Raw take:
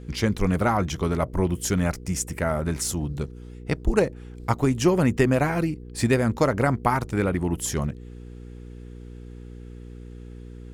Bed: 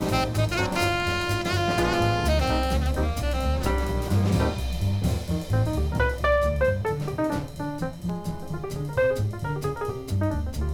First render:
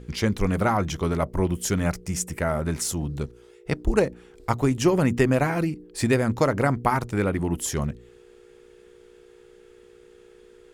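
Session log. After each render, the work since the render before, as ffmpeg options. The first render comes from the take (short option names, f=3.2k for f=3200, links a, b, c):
-af "bandreject=f=60:t=h:w=4,bandreject=f=120:t=h:w=4,bandreject=f=180:t=h:w=4,bandreject=f=240:t=h:w=4,bandreject=f=300:t=h:w=4"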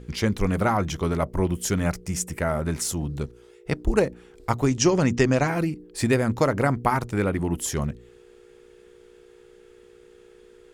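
-filter_complex "[0:a]asettb=1/sr,asplit=3[a][b][c];[a]atrim=end=4.664[d];[b]atrim=start=4.66:end=5.48,asetpts=PTS-STARTPTS,afade=t=in:d=0.004:c=qsin,afade=t=out:st=0.816:d=0.004:c=qsin,lowpass=f=6k:t=q:w=3[e];[c]atrim=start=5.476[f];[d][e]acrossfade=d=0.004:c1=hsin:c2=qsin[g];[g][f]acrossfade=d=0.004:c1=qsin:c2=hsin"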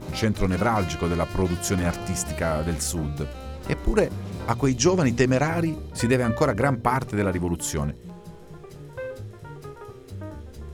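-filter_complex "[1:a]volume=-11.5dB[a];[0:a][a]amix=inputs=2:normalize=0"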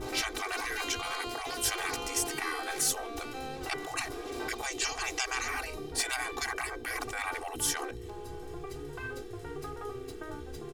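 -af "afftfilt=real='re*lt(hypot(re,im),0.0891)':imag='im*lt(hypot(re,im),0.0891)':win_size=1024:overlap=0.75,aecho=1:1:2.6:0.89"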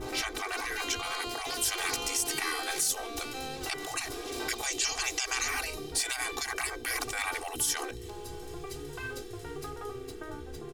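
-filter_complex "[0:a]acrossover=split=2800[a][b];[b]dynaudnorm=f=260:g=11:m=8dB[c];[a][c]amix=inputs=2:normalize=0,alimiter=limit=-18dB:level=0:latency=1:release=99"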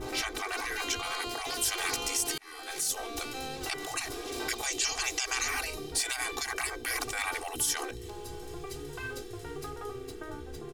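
-filter_complex "[0:a]asplit=2[a][b];[a]atrim=end=2.38,asetpts=PTS-STARTPTS,afade=t=out:st=2.376:d=0.004:c=hsin[c];[b]atrim=start=2.38,asetpts=PTS-STARTPTS,afade=t=in:d=0.63[d];[c][d]concat=n=2:v=0:a=1"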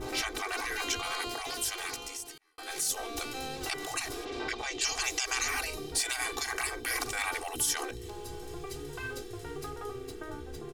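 -filter_complex "[0:a]asplit=3[a][b][c];[a]afade=t=out:st=4.24:d=0.02[d];[b]lowpass=3.8k,afade=t=in:st=4.24:d=0.02,afade=t=out:st=4.8:d=0.02[e];[c]afade=t=in:st=4.8:d=0.02[f];[d][e][f]amix=inputs=3:normalize=0,asettb=1/sr,asplit=3[g][h][i];[g]atrim=end=6.054[j];[h]atrim=start=6.05:end=7.29,asetpts=PTS-STARTPTS,afade=t=in:d=0.004:c=qsin,afade=t=out:st=1.236:d=0.004:c=qsin,asplit=2[k][l];[l]adelay=43,volume=-13dB[m];[k][m]amix=inputs=2:normalize=0,atrim=end_sample=54684[n];[i]atrim=start=7.286[o];[j][n]acrossfade=d=0.004:c1=hsin:c2=qsin[p];[p][o]acrossfade=d=0.004:c1=qsin:c2=hsin,asplit=2[q][r];[q]atrim=end=2.58,asetpts=PTS-STARTPTS,afade=t=out:st=1.22:d=1.36[s];[r]atrim=start=2.58,asetpts=PTS-STARTPTS,afade=t=in:d=0.004:c=hsin[t];[s][t]concat=n=2:v=0:a=1"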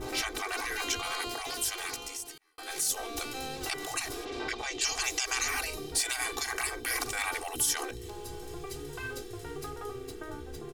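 -af "highshelf=f=9.9k:g=3.5"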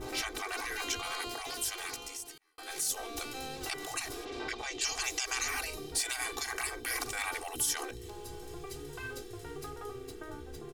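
-af "volume=-3dB"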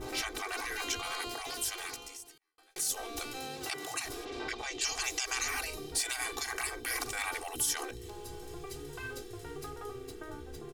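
-filter_complex "[0:a]asettb=1/sr,asplit=3[a][b][c];[a]atrim=end=3.384[d];[b]atrim=start=3.38:end=4.05,asetpts=PTS-STARTPTS,afade=t=in:d=0.004:c=qsin,afade=t=out:st=0.666:d=0.004:c=qsin,highpass=96[e];[c]atrim=start=4.046[f];[d][e]acrossfade=d=0.004:c1=hsin:c2=qsin[g];[g][f]acrossfade=d=0.004:c1=qsin:c2=hsin,asplit=2[h][i];[h]atrim=end=2.76,asetpts=PTS-STARTPTS,afade=t=out:st=1.76:d=1[j];[i]atrim=start=2.76,asetpts=PTS-STARTPTS,afade=t=in:d=0.004:c=hsin[k];[j][k]concat=n=2:v=0:a=1"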